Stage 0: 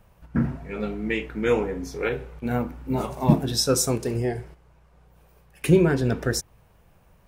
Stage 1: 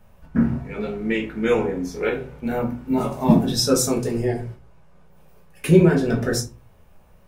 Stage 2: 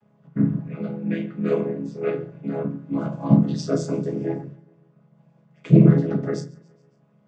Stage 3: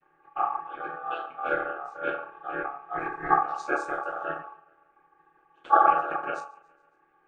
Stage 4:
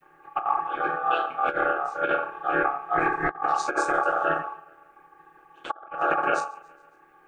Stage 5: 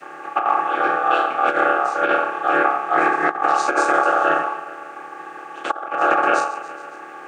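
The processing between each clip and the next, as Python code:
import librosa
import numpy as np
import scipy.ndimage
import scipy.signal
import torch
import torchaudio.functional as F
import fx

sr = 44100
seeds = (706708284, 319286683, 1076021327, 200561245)

y1 = fx.room_shoebox(x, sr, seeds[0], volume_m3=120.0, walls='furnished', distance_m=1.4)
y1 = y1 * librosa.db_to_amplitude(-1.0)
y2 = fx.chord_vocoder(y1, sr, chord='minor triad', root=49)
y2 = fx.echo_feedback(y2, sr, ms=139, feedback_pct=56, wet_db=-23.5)
y3 = fx.graphic_eq_15(y2, sr, hz=(100, 630, 1600, 4000), db=(12, 11, 9, -9))
y3 = y3 * np.sin(2.0 * np.pi * 990.0 * np.arange(len(y3)) / sr)
y3 = y3 * librosa.db_to_amplitude(-7.0)
y4 = fx.high_shelf(y3, sr, hz=5800.0, db=6.5)
y4 = fx.over_compress(y4, sr, threshold_db=-30.0, ratio=-0.5)
y4 = y4 * librosa.db_to_amplitude(5.5)
y5 = fx.bin_compress(y4, sr, power=0.6)
y5 = scipy.signal.sosfilt(scipy.signal.butter(4, 210.0, 'highpass', fs=sr, output='sos'), y5)
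y5 = y5 * librosa.db_to_amplitude(4.0)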